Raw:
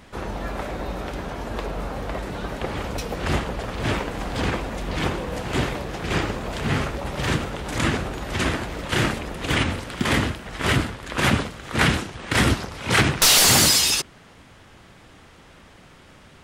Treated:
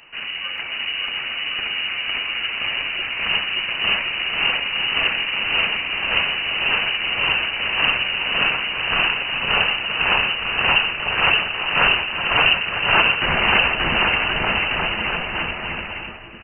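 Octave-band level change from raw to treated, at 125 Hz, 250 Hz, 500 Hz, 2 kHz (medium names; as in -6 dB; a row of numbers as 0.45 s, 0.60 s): -10.0 dB, -8.0 dB, -2.0 dB, +9.0 dB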